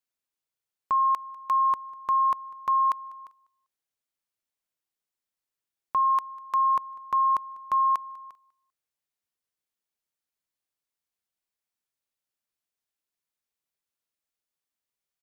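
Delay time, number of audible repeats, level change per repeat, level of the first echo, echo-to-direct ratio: 197 ms, 2, -11.5 dB, -23.0 dB, -22.5 dB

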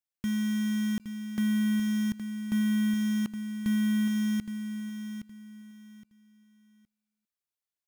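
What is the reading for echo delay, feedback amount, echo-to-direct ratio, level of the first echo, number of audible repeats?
817 ms, 25%, -9.0 dB, -9.5 dB, 3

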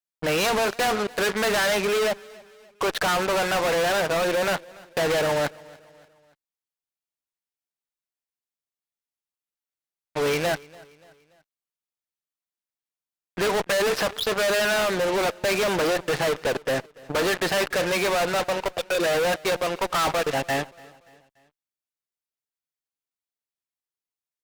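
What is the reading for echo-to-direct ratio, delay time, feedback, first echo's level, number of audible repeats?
-22.0 dB, 289 ms, 46%, -23.0 dB, 2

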